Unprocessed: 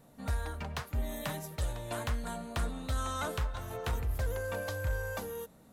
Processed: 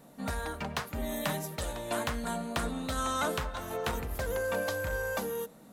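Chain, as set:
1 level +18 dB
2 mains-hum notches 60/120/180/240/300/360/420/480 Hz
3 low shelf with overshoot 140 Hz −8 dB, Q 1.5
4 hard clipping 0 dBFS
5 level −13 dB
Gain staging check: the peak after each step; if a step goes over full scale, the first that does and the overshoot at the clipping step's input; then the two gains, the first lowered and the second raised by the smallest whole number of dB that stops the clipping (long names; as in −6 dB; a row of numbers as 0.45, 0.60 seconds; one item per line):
−5.5, −4.0, −5.0, −5.0, −18.0 dBFS
no step passes full scale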